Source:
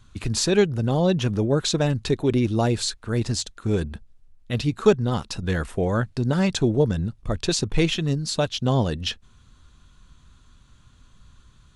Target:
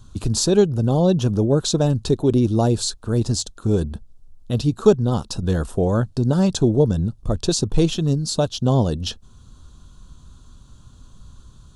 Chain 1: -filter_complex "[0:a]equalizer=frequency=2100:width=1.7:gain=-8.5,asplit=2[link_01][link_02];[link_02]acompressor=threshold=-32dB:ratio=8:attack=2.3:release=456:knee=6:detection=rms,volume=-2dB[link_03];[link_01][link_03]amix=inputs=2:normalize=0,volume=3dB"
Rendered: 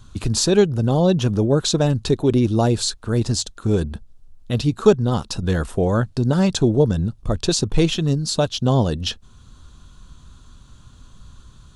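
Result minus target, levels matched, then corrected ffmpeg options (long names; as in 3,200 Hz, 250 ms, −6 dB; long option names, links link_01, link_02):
2,000 Hz band +5.5 dB
-filter_complex "[0:a]equalizer=frequency=2100:width=1.7:gain=-19.5,asplit=2[link_01][link_02];[link_02]acompressor=threshold=-32dB:ratio=8:attack=2.3:release=456:knee=6:detection=rms,volume=-2dB[link_03];[link_01][link_03]amix=inputs=2:normalize=0,volume=3dB"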